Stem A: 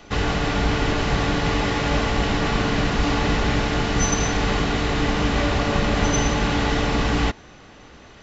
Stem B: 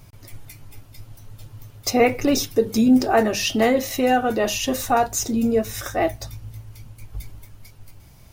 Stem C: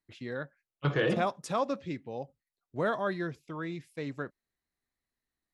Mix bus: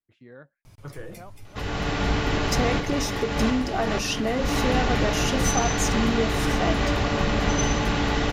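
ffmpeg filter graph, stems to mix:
-filter_complex "[0:a]adelay=1450,volume=0.75[s0];[1:a]lowpass=11000,acompressor=threshold=0.112:ratio=6,adelay=650,volume=0.668[s1];[2:a]acrossover=split=2900[s2][s3];[s3]acompressor=threshold=0.00112:ratio=4:attack=1:release=60[s4];[s2][s4]amix=inputs=2:normalize=0,equalizer=f=5100:w=0.56:g=-7,volume=1.33,afade=t=out:st=0.7:d=0.72:silence=0.298538,afade=t=in:st=3.09:d=0.61:silence=0.281838,asplit=2[s5][s6];[s6]apad=whole_len=426716[s7];[s0][s7]sidechaincompress=threshold=0.00355:ratio=8:attack=11:release=410[s8];[s8][s1][s5]amix=inputs=3:normalize=0"

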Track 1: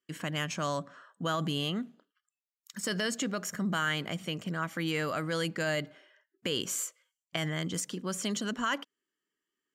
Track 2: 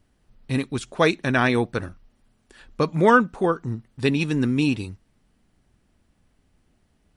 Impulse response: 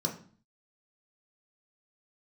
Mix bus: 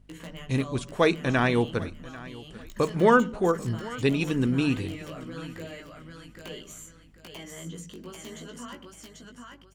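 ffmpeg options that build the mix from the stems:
-filter_complex "[0:a]acompressor=threshold=0.0126:ratio=16,aeval=exprs='(mod(31.6*val(0)+1,2)-1)/31.6':c=same,flanger=delay=16:depth=3.2:speed=0.82,volume=1.19,asplit=3[s0][s1][s2];[s1]volume=0.299[s3];[s2]volume=0.668[s4];[1:a]lowshelf=f=88:g=11.5,volume=0.631,asplit=3[s5][s6][s7];[s6]volume=0.0944[s8];[s7]volume=0.112[s9];[2:a]atrim=start_sample=2205[s10];[s3][s8]amix=inputs=2:normalize=0[s11];[s11][s10]afir=irnorm=-1:irlink=0[s12];[s4][s9]amix=inputs=2:normalize=0,aecho=0:1:791|1582|2373|3164:1|0.29|0.0841|0.0244[s13];[s0][s5][s12][s13]amix=inputs=4:normalize=0,aeval=exprs='val(0)+0.00141*(sin(2*PI*50*n/s)+sin(2*PI*2*50*n/s)/2+sin(2*PI*3*50*n/s)/3+sin(2*PI*4*50*n/s)/4+sin(2*PI*5*50*n/s)/5)':c=same"

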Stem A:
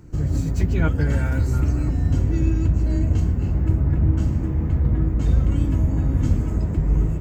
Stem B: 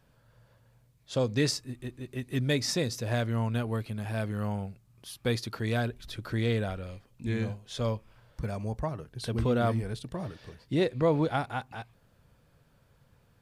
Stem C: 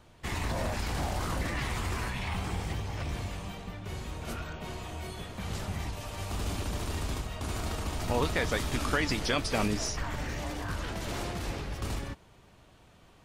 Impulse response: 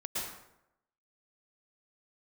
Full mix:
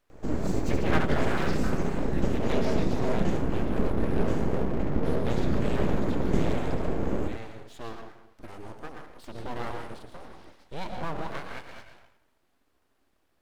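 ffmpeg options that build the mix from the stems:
-filter_complex "[0:a]highshelf=f=5000:g=-9,adelay=100,volume=1.19,asplit=2[s0][s1];[s1]volume=0.562[s2];[1:a]acrossover=split=3700[s3][s4];[s4]acompressor=threshold=0.00282:ratio=4:attack=1:release=60[s5];[s3][s5]amix=inputs=2:normalize=0,volume=0.376,asplit=2[s6][s7];[s7]volume=0.668[s8];[3:a]atrim=start_sample=2205[s9];[s8][s9]afir=irnorm=-1:irlink=0[s10];[s2]aecho=0:1:72:1[s11];[s0][s6][s10][s11]amix=inputs=4:normalize=0,highpass=130,aeval=exprs='abs(val(0))':c=same"

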